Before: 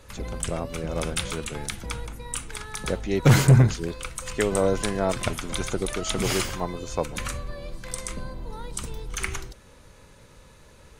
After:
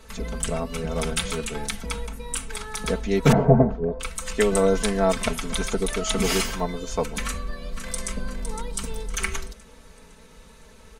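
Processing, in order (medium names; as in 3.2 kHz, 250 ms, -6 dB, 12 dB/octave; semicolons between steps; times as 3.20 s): 3.32–4.00 s: resonant low-pass 690 Hz, resonance Q 3.4; comb 4.5 ms, depth 86%; 7.25–8.10 s: echo throw 510 ms, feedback 45%, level -9 dB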